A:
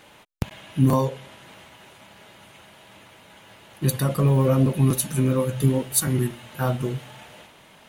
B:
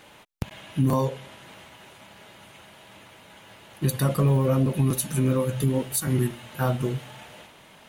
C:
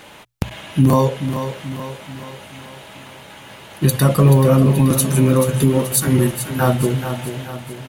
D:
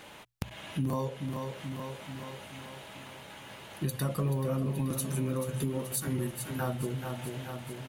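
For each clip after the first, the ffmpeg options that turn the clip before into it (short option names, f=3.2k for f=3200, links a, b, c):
-af "alimiter=limit=-13dB:level=0:latency=1:release=147"
-filter_complex "[0:a]bandreject=f=60:t=h:w=6,bandreject=f=120:t=h:w=6,asplit=2[a][b];[b]aecho=0:1:432|864|1296|1728|2160|2592:0.335|0.171|0.0871|0.0444|0.0227|0.0116[c];[a][c]amix=inputs=2:normalize=0,volume=9dB"
-af "acompressor=threshold=-28dB:ratio=2,volume=-8dB"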